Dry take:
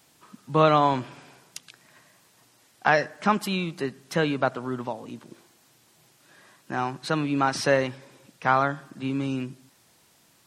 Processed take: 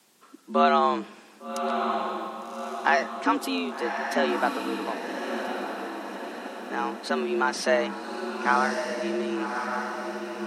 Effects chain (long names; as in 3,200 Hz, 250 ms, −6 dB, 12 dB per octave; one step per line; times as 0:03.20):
feedback delay with all-pass diffusion 1,159 ms, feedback 52%, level −5 dB
frequency shifter +75 Hz
level −1.5 dB